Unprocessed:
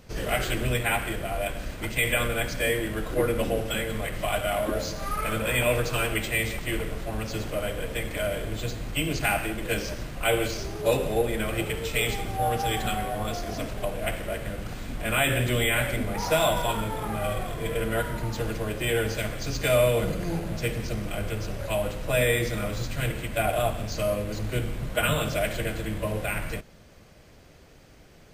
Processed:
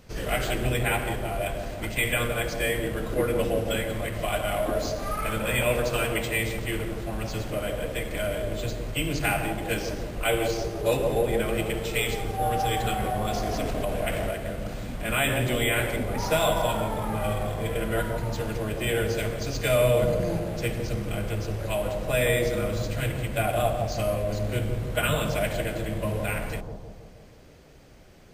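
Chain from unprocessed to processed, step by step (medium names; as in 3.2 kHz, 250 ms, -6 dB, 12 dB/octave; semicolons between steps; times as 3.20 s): bucket-brigade echo 162 ms, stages 1024, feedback 57%, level -4.5 dB; 13.00–14.31 s: level flattener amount 70%; trim -1 dB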